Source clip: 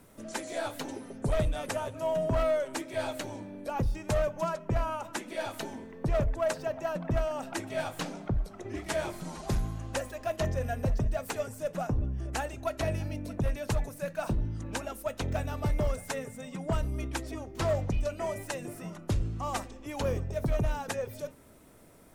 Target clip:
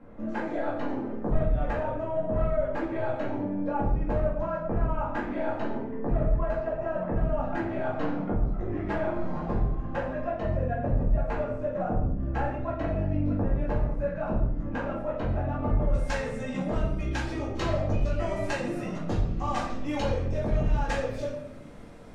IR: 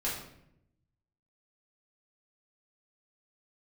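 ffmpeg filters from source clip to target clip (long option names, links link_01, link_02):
-filter_complex "[0:a]asetnsamples=nb_out_samples=441:pad=0,asendcmd='15.93 lowpass f 5100',lowpass=1400,acompressor=threshold=-34dB:ratio=5[link_01];[1:a]atrim=start_sample=2205[link_02];[link_01][link_02]afir=irnorm=-1:irlink=0,volume=3dB"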